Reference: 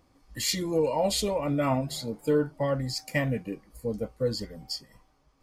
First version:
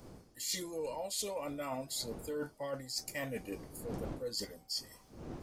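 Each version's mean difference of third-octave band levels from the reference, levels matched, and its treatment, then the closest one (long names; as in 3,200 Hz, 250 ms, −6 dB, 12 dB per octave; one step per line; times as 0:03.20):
8.0 dB: wind on the microphone 180 Hz −33 dBFS
bass and treble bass −12 dB, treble +12 dB
reversed playback
downward compressor 6 to 1, threshold −37 dBFS, peak gain reduction 20 dB
reversed playback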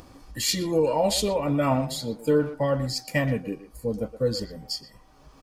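1.5 dB: notch filter 2,100 Hz, Q 12
upward compression, threshold −41 dBFS
far-end echo of a speakerphone 120 ms, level −12 dB
level +3 dB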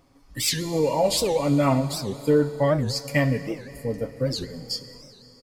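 5.5 dB: comb filter 7.2 ms, depth 44%
four-comb reverb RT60 3.5 s, combs from 28 ms, DRR 12.5 dB
wow of a warped record 78 rpm, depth 250 cents
level +3.5 dB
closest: second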